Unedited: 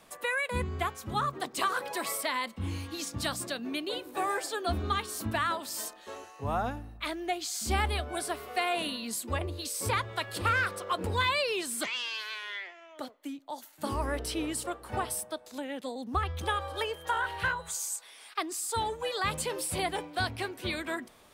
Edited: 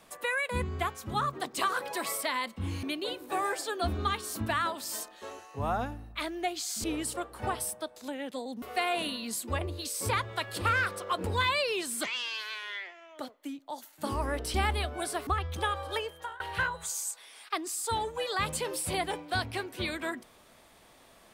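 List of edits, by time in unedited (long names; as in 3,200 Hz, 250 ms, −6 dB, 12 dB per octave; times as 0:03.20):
0:02.83–0:03.68: remove
0:07.69–0:08.42: swap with 0:14.34–0:16.12
0:16.81–0:17.25: fade out, to −23 dB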